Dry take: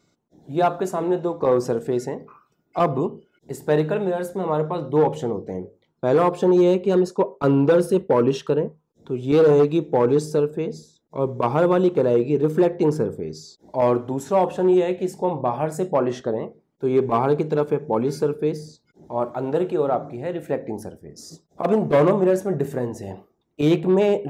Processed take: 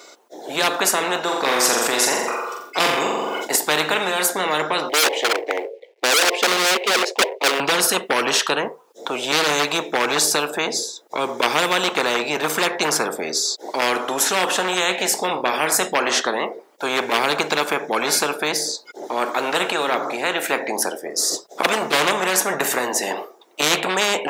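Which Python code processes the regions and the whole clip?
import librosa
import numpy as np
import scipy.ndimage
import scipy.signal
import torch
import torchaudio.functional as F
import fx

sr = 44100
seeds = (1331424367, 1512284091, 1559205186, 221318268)

y = fx.chain(x, sr, fx.room_flutter(wall_m=7.5, rt60_s=0.57),
    fx.sustainer(db_per_s=66.0), at=(1.23, 3.56))
y = fx.chain(y, sr, fx.law_mismatch(coded='A'),
    fx.curve_eq(hz=(110.0, 170.0, 480.0, 1300.0, 2100.0, 10000.0), db=(0, -30, 15, -23, 2, -19)),
    fx.clip_hard(threshold_db=-13.5), at=(4.89, 7.6))
y = scipy.signal.sosfilt(scipy.signal.butter(4, 440.0, 'highpass', fs=sr, output='sos'), y)
y = fx.spectral_comp(y, sr, ratio=4.0)
y = y * 10.0 ** (7.0 / 20.0)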